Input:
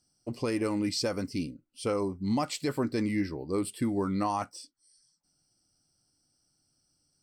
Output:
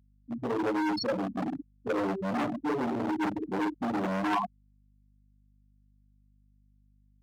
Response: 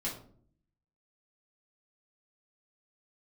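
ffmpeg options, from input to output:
-filter_complex "[1:a]atrim=start_sample=2205,afade=t=out:st=0.42:d=0.01,atrim=end_sample=18963[s0];[0:a][s0]afir=irnorm=-1:irlink=0,afftfilt=real='re*gte(hypot(re,im),0.178)':imag='im*gte(hypot(re,im),0.178)':win_size=1024:overlap=0.75,asoftclip=type=hard:threshold=0.0398,highpass=f=660:p=1,aeval=exprs='val(0)+0.000316*(sin(2*PI*50*n/s)+sin(2*PI*2*50*n/s)/2+sin(2*PI*3*50*n/s)/3+sin(2*PI*4*50*n/s)/4+sin(2*PI*5*50*n/s)/5)':c=same,volume=2.37"

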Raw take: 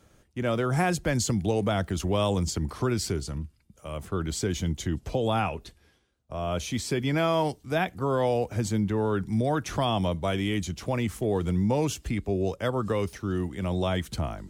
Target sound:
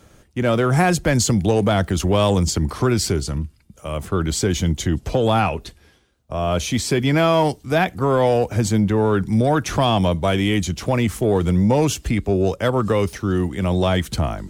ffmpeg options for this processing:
-af "acontrast=32,asoftclip=type=tanh:threshold=0.316,volume=1.58"

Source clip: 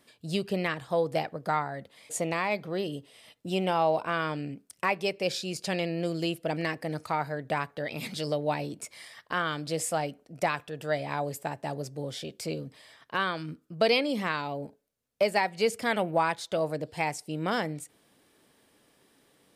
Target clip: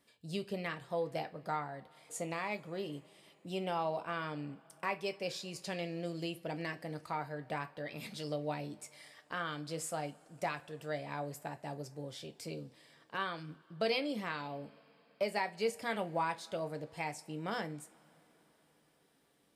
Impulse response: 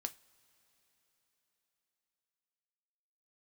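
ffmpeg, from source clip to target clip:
-filter_complex "[1:a]atrim=start_sample=2205[s0];[0:a][s0]afir=irnorm=-1:irlink=0,volume=0.447"

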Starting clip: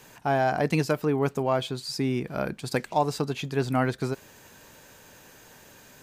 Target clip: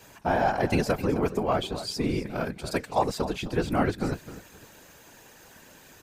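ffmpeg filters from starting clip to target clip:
-af "aecho=1:1:260|520|780:0.2|0.0479|0.0115,afftfilt=real='hypot(re,im)*cos(2*PI*random(0))':imag='hypot(re,im)*sin(2*PI*random(1))':win_size=512:overlap=0.75,volume=1.88"

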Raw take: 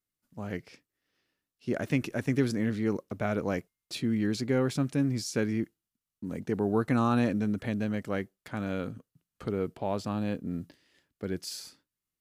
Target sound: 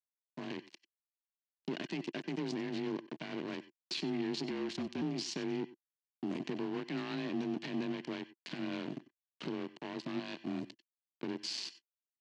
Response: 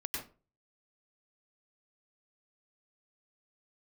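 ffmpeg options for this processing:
-filter_complex "[0:a]asplit=3[s0][s1][s2];[s0]afade=t=out:st=10.18:d=0.02[s3];[s1]lowshelf=f=510:t=q:w=3:g=-8.5,afade=t=in:st=10.18:d=0.02,afade=t=out:st=10.61:d=0.02[s4];[s2]afade=t=in:st=10.61:d=0.02[s5];[s3][s4][s5]amix=inputs=3:normalize=0,acompressor=threshold=0.0126:ratio=4,alimiter=level_in=4.73:limit=0.0631:level=0:latency=1:release=13,volume=0.211,afreqshift=27,aeval=exprs='sgn(val(0))*max(abs(val(0))-0.00473,0)':c=same,asettb=1/sr,asplit=3[s6][s7][s8];[s6]atrim=end=4.494[s9];[s7]atrim=start=4.49:end=5.02,asetpts=PTS-STARTPTS,afade=t=in:d=0.004:c=qsin,afade=t=out:st=0.526:d=0.004:c=qsin,afreqshift=-66[s10];[s8]atrim=start=5.016[s11];[s9][s10]acrossfade=d=0.004:c1=hsin:c2=qsin[s12];[s12][s11]acrossfade=d=0.004:c1=qsin:c2=hsin,highpass=f=160:w=0.5412,highpass=f=160:w=1.3066,equalizer=f=340:t=q:w=4:g=6,equalizer=f=520:t=q:w=4:g=-10,equalizer=f=770:t=q:w=4:g=-4,equalizer=f=1300:t=q:w=4:g=-10,equalizer=f=2900:t=q:w=4:g=7,equalizer=f=4300:t=q:w=4:g=6,lowpass=f=6300:w=0.5412,lowpass=f=6300:w=1.3066,asplit=2[s13][s14];[1:a]atrim=start_sample=2205,atrim=end_sample=4410[s15];[s14][s15]afir=irnorm=-1:irlink=0,volume=0.335[s16];[s13][s16]amix=inputs=2:normalize=0,volume=4.22"

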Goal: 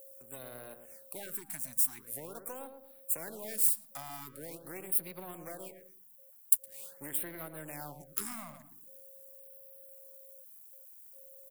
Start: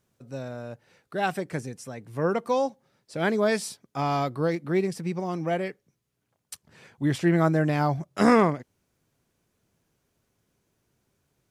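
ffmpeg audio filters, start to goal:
-filter_complex "[0:a]aeval=exprs='if(lt(val(0),0),0.251*val(0),val(0))':c=same,acrossover=split=300|660[s0][s1][s2];[s0]acompressor=threshold=0.0224:ratio=4[s3];[s1]acompressor=threshold=0.00891:ratio=4[s4];[s2]acompressor=threshold=0.00631:ratio=4[s5];[s3][s4][s5]amix=inputs=3:normalize=0,aexciter=amount=4.2:drive=6.7:freq=7800,asplit=2[s6][s7];[s7]acompressor=threshold=0.0126:ratio=6,volume=0.944[s8];[s6][s8]amix=inputs=2:normalize=0,aemphasis=mode=production:type=riaa,aeval=exprs='val(0)+0.00501*sin(2*PI*540*n/s)':c=same,asplit=2[s9][s10];[s10]adelay=114,lowpass=f=990:p=1,volume=0.447,asplit=2[s11][s12];[s12]adelay=114,lowpass=f=990:p=1,volume=0.4,asplit=2[s13][s14];[s14]adelay=114,lowpass=f=990:p=1,volume=0.4,asplit=2[s15][s16];[s16]adelay=114,lowpass=f=990:p=1,volume=0.4,asplit=2[s17][s18];[s18]adelay=114,lowpass=f=990:p=1,volume=0.4[s19];[s11][s13][s15][s17][s19]amix=inputs=5:normalize=0[s20];[s9][s20]amix=inputs=2:normalize=0,afftfilt=real='re*(1-between(b*sr/1024,390*pow(7000/390,0.5+0.5*sin(2*PI*0.44*pts/sr))/1.41,390*pow(7000/390,0.5+0.5*sin(2*PI*0.44*pts/sr))*1.41))':imag='im*(1-between(b*sr/1024,390*pow(7000/390,0.5+0.5*sin(2*PI*0.44*pts/sr))/1.41,390*pow(7000/390,0.5+0.5*sin(2*PI*0.44*pts/sr))*1.41))':win_size=1024:overlap=0.75,volume=0.316"

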